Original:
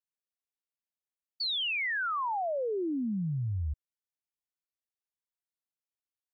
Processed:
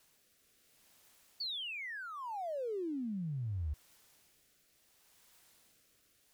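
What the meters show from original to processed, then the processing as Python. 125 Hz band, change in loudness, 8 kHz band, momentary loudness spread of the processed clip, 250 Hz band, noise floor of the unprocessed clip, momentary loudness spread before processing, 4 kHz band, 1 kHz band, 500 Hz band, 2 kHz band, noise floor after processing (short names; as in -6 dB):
-6.0 dB, -8.5 dB, n/a, 4 LU, -6.5 dB, under -85 dBFS, 6 LU, -8.5 dB, -10.0 dB, -6.5 dB, -11.5 dB, -71 dBFS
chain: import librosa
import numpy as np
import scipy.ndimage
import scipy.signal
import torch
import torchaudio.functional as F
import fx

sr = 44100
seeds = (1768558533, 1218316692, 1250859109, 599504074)

y = x + 0.5 * 10.0 ** (-49.5 / 20.0) * np.sign(x)
y = fx.rotary(y, sr, hz=0.7)
y = fx.dynamic_eq(y, sr, hz=920.0, q=0.74, threshold_db=-48.0, ratio=4.0, max_db=-5)
y = F.gain(torch.from_numpy(y), -4.0).numpy()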